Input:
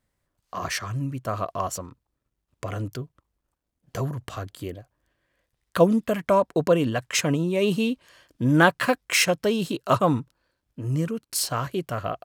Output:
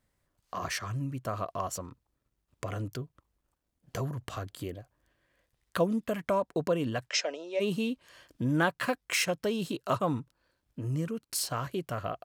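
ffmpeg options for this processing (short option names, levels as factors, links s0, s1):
-filter_complex "[0:a]acompressor=threshold=0.01:ratio=1.5,asplit=3[s0][s1][s2];[s0]afade=t=out:st=7.08:d=0.02[s3];[s1]highpass=f=440:w=0.5412,highpass=f=440:w=1.3066,equalizer=f=630:t=q:w=4:g=8,equalizer=f=1100:t=q:w=4:g=-10,equalizer=f=5300:t=q:w=4:g=9,lowpass=f=6200:w=0.5412,lowpass=f=6200:w=1.3066,afade=t=in:st=7.08:d=0.02,afade=t=out:st=7.59:d=0.02[s4];[s2]afade=t=in:st=7.59:d=0.02[s5];[s3][s4][s5]amix=inputs=3:normalize=0"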